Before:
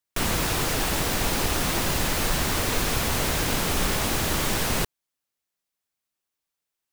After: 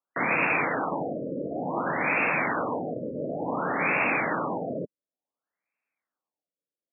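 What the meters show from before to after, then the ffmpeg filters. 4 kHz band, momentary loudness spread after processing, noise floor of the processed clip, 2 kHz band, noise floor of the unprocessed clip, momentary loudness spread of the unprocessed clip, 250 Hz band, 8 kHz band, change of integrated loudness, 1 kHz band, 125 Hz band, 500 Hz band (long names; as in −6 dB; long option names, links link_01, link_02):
below −30 dB, 10 LU, below −85 dBFS, +2.5 dB, −85 dBFS, 1 LU, −1.5 dB, below −40 dB, −3.0 dB, +1.0 dB, −10.5 dB, +1.0 dB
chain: -af "highpass=frequency=190:width=0.5412,highpass=frequency=190:width=1.3066,equalizer=frequency=210:width_type=q:width=4:gain=-7,equalizer=frequency=380:width_type=q:width=4:gain=-7,equalizer=frequency=2400:width_type=q:width=4:gain=10,lowpass=frequency=6900:width=0.5412,lowpass=frequency=6900:width=1.3066,afftfilt=real='re*lt(b*sr/1024,600*pow(2800/600,0.5+0.5*sin(2*PI*0.56*pts/sr)))':imag='im*lt(b*sr/1024,600*pow(2800/600,0.5+0.5*sin(2*PI*0.56*pts/sr)))':win_size=1024:overlap=0.75,volume=3dB"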